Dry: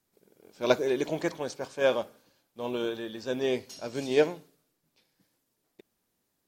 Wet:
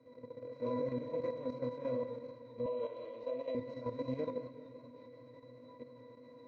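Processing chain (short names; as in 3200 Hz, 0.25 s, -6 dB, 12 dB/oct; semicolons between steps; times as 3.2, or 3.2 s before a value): per-bin compression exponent 0.4; chorus 1.4 Hz, delay 19 ms, depth 7.9 ms; octave resonator B, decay 0.18 s; level quantiser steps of 10 dB; 2.66–3.55 speaker cabinet 490–7300 Hz, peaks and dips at 630 Hz +8 dB, 1600 Hz -6 dB, 2900 Hz +7 dB, 5400 Hz -5 dB; warbling echo 0.192 s, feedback 69%, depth 108 cents, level -15.5 dB; gain +5 dB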